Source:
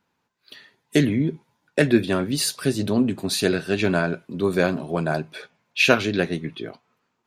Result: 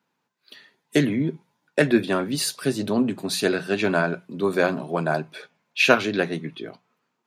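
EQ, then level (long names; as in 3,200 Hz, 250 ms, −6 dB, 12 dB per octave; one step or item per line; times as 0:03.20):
high-pass filter 120 Hz 24 dB per octave
mains-hum notches 60/120/180 Hz
dynamic equaliser 1,000 Hz, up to +5 dB, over −34 dBFS, Q 0.79
−2.0 dB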